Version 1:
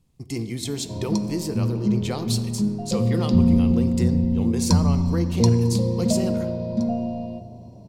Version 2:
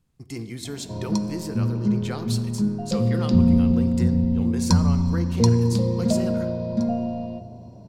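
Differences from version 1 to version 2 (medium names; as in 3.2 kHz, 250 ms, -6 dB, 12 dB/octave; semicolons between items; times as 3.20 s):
speech -5.0 dB; master: add peaking EQ 1.5 kHz +9 dB 0.65 oct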